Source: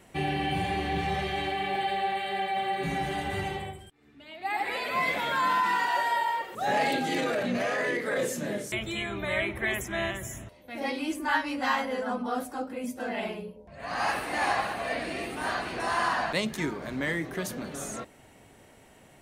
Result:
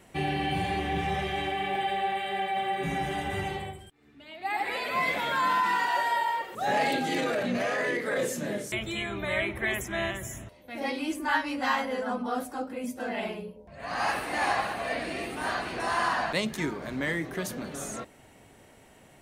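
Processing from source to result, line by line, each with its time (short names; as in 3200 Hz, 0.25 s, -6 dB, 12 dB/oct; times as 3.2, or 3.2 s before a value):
0.79–3.49 notch 4300 Hz, Q 6.7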